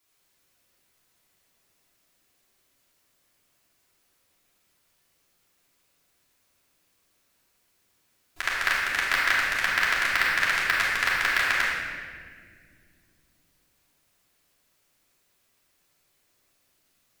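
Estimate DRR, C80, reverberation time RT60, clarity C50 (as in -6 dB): -8.0 dB, 0.5 dB, no single decay rate, -1.5 dB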